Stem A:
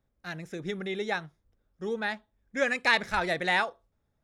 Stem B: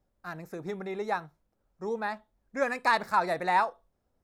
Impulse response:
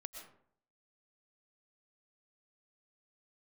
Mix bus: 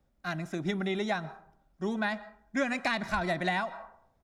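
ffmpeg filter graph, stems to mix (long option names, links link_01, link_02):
-filter_complex "[0:a]volume=0.5dB,asplit=2[link_01][link_02];[link_02]volume=-15dB[link_03];[1:a]lowpass=6700,volume=-1,adelay=2.3,volume=-1.5dB,asplit=2[link_04][link_05];[link_05]volume=-5.5dB[link_06];[2:a]atrim=start_sample=2205[link_07];[link_03][link_06]amix=inputs=2:normalize=0[link_08];[link_08][link_07]afir=irnorm=-1:irlink=0[link_09];[link_01][link_04][link_09]amix=inputs=3:normalize=0,acrossover=split=270[link_10][link_11];[link_11]acompressor=threshold=-27dB:ratio=10[link_12];[link_10][link_12]amix=inputs=2:normalize=0"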